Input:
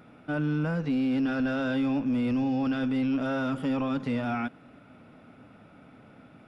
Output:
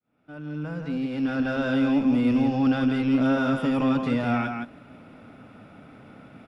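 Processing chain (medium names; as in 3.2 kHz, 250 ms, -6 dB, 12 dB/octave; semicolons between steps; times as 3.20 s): fade-in on the opening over 1.96 s; delay 167 ms -5.5 dB; trim +4 dB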